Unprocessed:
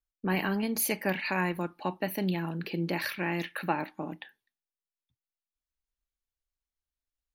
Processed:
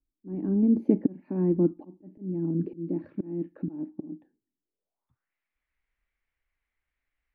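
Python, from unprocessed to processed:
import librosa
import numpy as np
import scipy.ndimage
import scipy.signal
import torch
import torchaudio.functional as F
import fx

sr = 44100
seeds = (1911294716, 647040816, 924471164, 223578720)

y = fx.auto_swell(x, sr, attack_ms=632.0)
y = fx.filter_sweep_lowpass(y, sr, from_hz=300.0, to_hz=2100.0, start_s=4.62, end_s=5.32, q=4.2)
y = F.gain(torch.from_numpy(y), 7.5).numpy()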